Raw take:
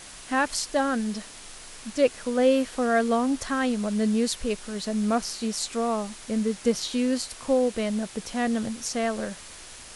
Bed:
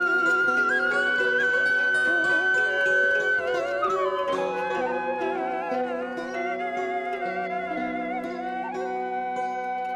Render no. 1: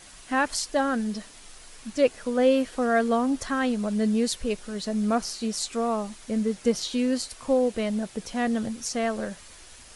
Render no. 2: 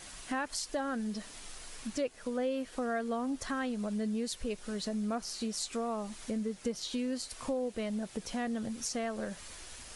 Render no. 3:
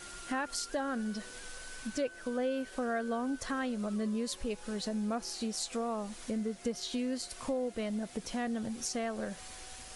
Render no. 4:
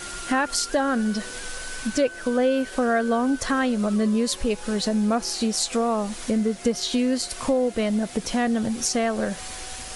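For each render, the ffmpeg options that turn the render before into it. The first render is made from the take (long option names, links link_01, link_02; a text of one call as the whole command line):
ffmpeg -i in.wav -af "afftdn=noise_reduction=6:noise_floor=-44" out.wav
ffmpeg -i in.wav -af "acompressor=threshold=-35dB:ratio=3" out.wav
ffmpeg -i in.wav -i bed.wav -filter_complex "[1:a]volume=-29.5dB[link_01];[0:a][link_01]amix=inputs=2:normalize=0" out.wav
ffmpeg -i in.wav -af "volume=12dB" out.wav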